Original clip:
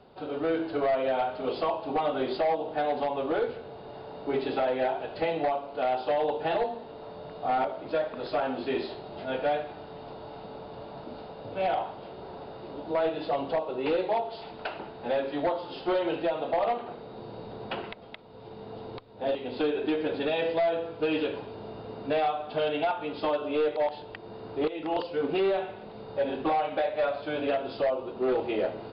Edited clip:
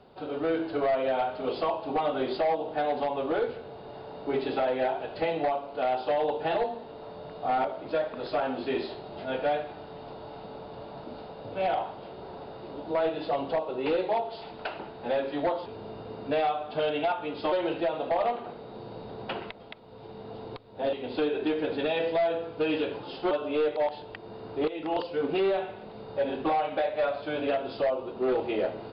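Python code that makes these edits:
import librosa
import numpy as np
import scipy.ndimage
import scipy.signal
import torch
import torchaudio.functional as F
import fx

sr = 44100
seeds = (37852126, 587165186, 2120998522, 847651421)

y = fx.edit(x, sr, fx.swap(start_s=15.66, length_s=0.28, other_s=21.45, other_length_s=1.86), tone=tone)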